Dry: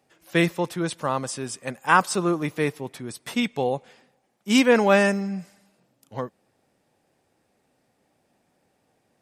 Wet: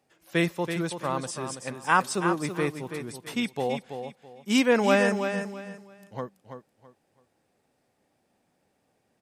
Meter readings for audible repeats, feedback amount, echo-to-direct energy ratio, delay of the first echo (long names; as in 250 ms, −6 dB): 3, 25%, −7.5 dB, 330 ms